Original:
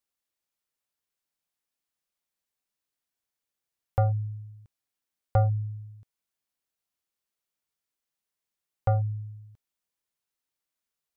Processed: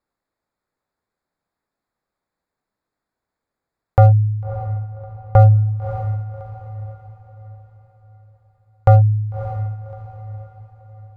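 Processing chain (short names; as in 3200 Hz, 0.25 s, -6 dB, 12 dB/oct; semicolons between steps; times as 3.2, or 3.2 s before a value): Wiener smoothing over 15 samples; on a send: diffused feedback echo 0.608 s, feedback 42%, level -13.5 dB; on the sum: maximiser +18 dB; 4.44–5.76 mismatched tape noise reduction decoder only; gain -3 dB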